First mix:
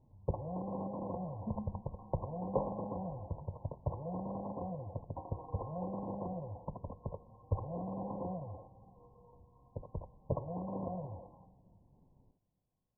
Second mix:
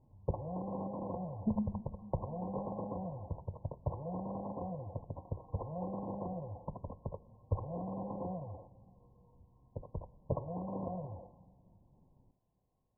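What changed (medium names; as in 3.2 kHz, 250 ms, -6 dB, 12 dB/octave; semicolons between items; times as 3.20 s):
speech +8.0 dB; second sound -9.0 dB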